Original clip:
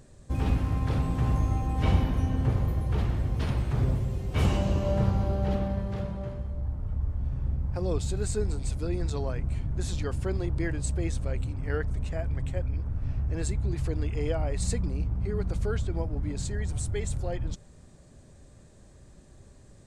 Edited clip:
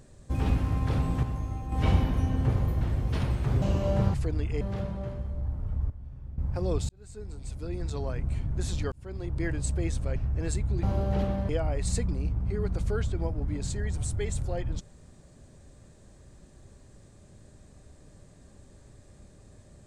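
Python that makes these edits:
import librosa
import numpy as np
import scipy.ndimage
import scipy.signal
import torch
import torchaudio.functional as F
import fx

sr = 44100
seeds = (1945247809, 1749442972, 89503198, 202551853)

y = fx.edit(x, sr, fx.clip_gain(start_s=1.23, length_s=0.49, db=-7.0),
    fx.cut(start_s=2.81, length_s=0.27),
    fx.cut(start_s=3.89, length_s=0.74),
    fx.swap(start_s=5.15, length_s=0.66, other_s=13.77, other_length_s=0.47),
    fx.clip_gain(start_s=7.1, length_s=0.48, db=-12.0),
    fx.fade_in_span(start_s=8.09, length_s=1.41),
    fx.fade_in_span(start_s=10.12, length_s=0.57),
    fx.cut(start_s=11.36, length_s=1.74), tone=tone)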